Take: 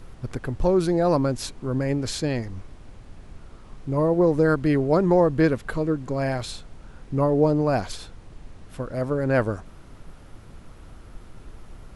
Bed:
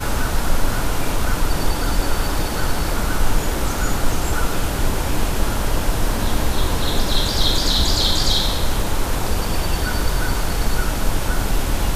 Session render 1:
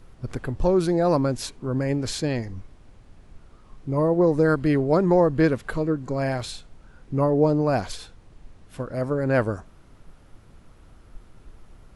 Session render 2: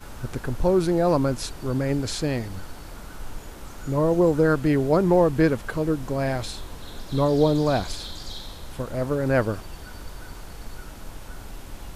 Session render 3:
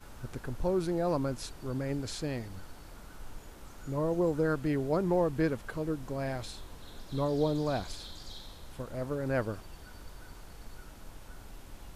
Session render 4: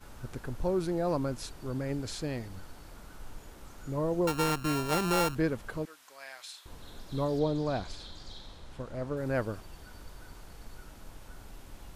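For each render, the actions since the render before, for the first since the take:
noise reduction from a noise print 6 dB
mix in bed −19 dB
level −9.5 dB
0:04.27–0:05.35: samples sorted by size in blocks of 32 samples; 0:05.85–0:06.66: high-pass filter 1,500 Hz; 0:07.39–0:09.17: high-frequency loss of the air 51 metres

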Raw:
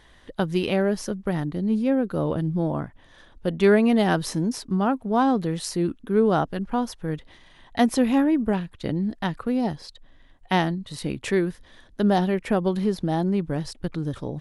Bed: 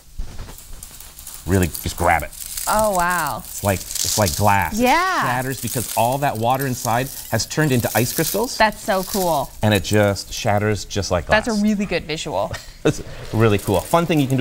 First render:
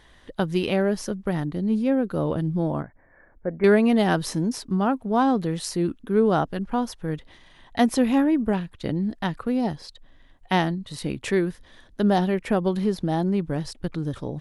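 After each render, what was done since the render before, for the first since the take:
0:02.82–0:03.64: Chebyshev low-pass with heavy ripple 2,300 Hz, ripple 6 dB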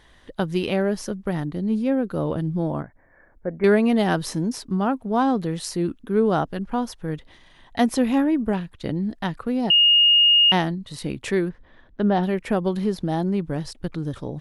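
0:09.70–0:10.52: beep over 2,850 Hz −12 dBFS
0:11.48–0:12.22: low-pass filter 1,600 Hz → 3,200 Hz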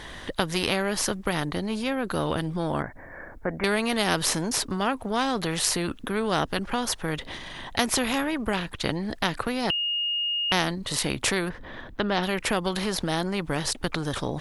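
in parallel at −1.5 dB: downward compressor, threshold −24 dBFS, peak gain reduction 11 dB
on the sum: every bin compressed towards the loudest bin 2 to 1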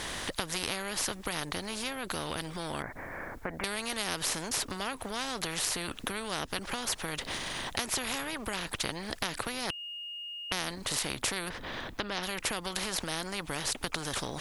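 downward compressor 3 to 1, threshold −30 dBFS, peak gain reduction 9.5 dB
every bin compressed towards the loudest bin 2 to 1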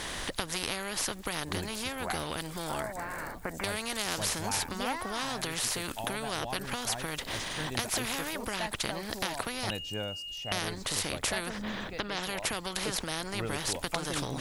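mix in bed −21.5 dB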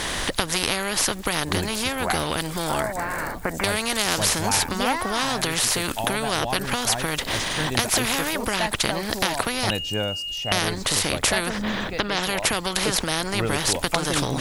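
level +10 dB
brickwall limiter −3 dBFS, peak gain reduction 2 dB

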